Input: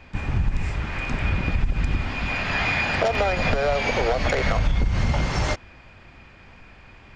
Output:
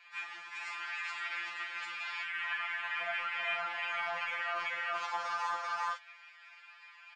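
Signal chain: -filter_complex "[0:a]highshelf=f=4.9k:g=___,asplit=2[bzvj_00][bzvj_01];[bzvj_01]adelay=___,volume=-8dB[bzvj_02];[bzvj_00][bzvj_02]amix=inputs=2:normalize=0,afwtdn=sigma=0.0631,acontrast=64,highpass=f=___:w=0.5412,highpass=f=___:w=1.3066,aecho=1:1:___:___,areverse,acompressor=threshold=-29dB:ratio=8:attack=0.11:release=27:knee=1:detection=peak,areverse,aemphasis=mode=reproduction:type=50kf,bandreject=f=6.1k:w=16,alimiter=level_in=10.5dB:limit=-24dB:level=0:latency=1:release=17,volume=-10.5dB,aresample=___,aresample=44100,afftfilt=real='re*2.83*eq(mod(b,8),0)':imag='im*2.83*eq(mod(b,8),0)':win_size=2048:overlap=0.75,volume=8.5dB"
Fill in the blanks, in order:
6.5, 38, 1.1k, 1.1k, 386, 0.631, 22050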